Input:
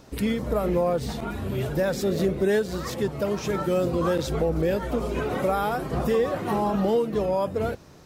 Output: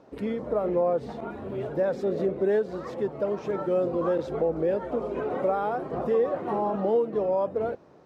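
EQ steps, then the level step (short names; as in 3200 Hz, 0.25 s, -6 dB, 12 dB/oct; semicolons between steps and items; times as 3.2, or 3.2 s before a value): band-pass 550 Hz, Q 0.82; 0.0 dB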